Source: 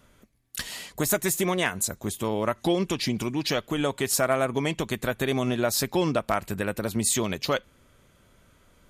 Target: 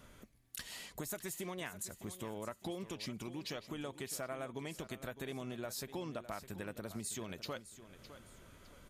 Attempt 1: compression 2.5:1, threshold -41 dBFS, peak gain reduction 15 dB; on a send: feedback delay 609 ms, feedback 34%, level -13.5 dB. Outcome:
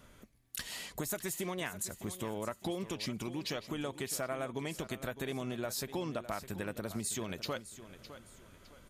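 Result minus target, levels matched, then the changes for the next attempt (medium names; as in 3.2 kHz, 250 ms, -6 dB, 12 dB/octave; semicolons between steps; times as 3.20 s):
compression: peak gain reduction -5 dB
change: compression 2.5:1, threshold -49.5 dBFS, peak gain reduction 20 dB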